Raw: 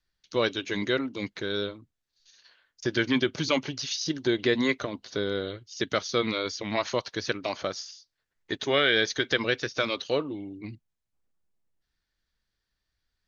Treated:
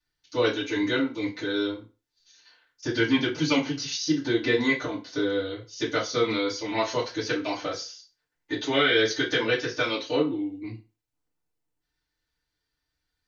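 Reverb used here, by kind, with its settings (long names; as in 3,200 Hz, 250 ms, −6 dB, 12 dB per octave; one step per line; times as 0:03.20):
feedback delay network reverb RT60 0.32 s, low-frequency decay 0.85×, high-frequency decay 0.85×, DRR −9 dB
level −8 dB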